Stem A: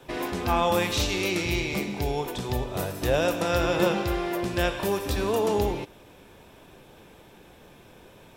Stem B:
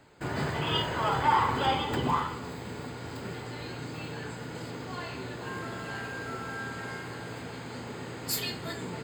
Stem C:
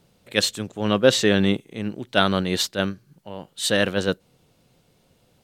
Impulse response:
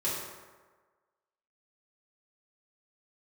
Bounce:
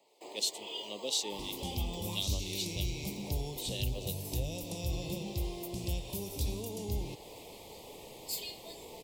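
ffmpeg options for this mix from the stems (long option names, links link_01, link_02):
-filter_complex "[0:a]highshelf=frequency=3700:gain=11.5,acrossover=split=160[link_01][link_02];[link_02]acompressor=threshold=-38dB:ratio=2.5[link_03];[link_01][link_03]amix=inputs=2:normalize=0,adelay=1300,volume=-3.5dB[link_04];[1:a]highpass=frequency=400:width=0.5412,highpass=frequency=400:width=1.3066,volume=-6dB[link_05];[2:a]highpass=630,acrossover=split=1800[link_06][link_07];[link_06]aeval=exprs='val(0)*(1-0.7/2+0.7/2*cos(2*PI*3*n/s))':channel_layout=same[link_08];[link_07]aeval=exprs='val(0)*(1-0.7/2-0.7/2*cos(2*PI*3*n/s))':channel_layout=same[link_09];[link_08][link_09]amix=inputs=2:normalize=0,volume=-6dB[link_10];[link_04][link_05][link_10]amix=inputs=3:normalize=0,acrossover=split=360|3000[link_11][link_12][link_13];[link_12]acompressor=threshold=-44dB:ratio=6[link_14];[link_11][link_14][link_13]amix=inputs=3:normalize=0,asuperstop=centerf=1500:order=4:qfactor=0.96"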